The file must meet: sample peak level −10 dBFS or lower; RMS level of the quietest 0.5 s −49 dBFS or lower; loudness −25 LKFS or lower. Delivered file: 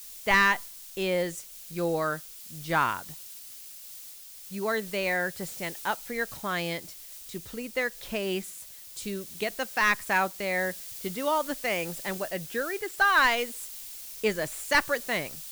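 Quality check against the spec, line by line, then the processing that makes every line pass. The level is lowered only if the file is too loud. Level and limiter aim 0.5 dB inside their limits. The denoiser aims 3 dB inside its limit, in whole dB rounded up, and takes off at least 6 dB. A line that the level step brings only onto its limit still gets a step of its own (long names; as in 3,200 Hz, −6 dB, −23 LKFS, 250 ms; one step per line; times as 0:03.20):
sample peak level −12.0 dBFS: in spec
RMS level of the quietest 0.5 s −46 dBFS: out of spec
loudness −28.5 LKFS: in spec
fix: broadband denoise 6 dB, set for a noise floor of −46 dBFS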